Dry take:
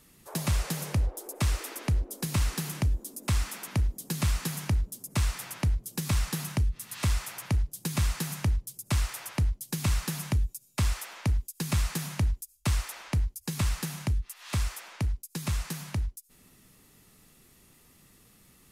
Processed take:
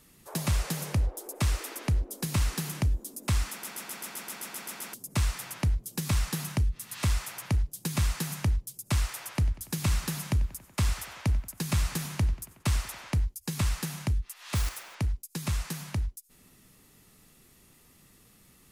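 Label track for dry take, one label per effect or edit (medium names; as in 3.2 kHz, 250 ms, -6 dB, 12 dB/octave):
3.510000	3.510000	stutter in place 0.13 s, 11 plays
9.210000	13.120000	tape echo 93 ms, feedback 85%, level -16 dB, low-pass 5.5 kHz
14.550000	14.960000	block-companded coder 3-bit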